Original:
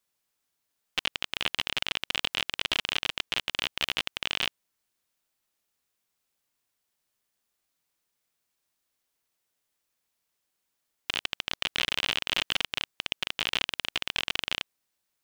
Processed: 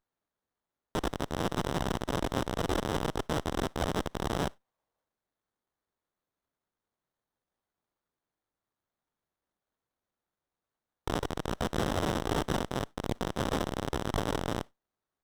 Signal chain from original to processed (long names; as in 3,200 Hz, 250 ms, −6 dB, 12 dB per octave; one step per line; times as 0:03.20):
pitch-shifted copies added +4 semitones 0 dB, +5 semitones −11 dB
gain on a spectral selection 0:04.59–0:05.06, 450–1,200 Hz +12 dB
on a send at −19.5 dB: convolution reverb RT60 0.15 s, pre-delay 15 ms
on the sum: windowed peak hold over 17 samples
level −8 dB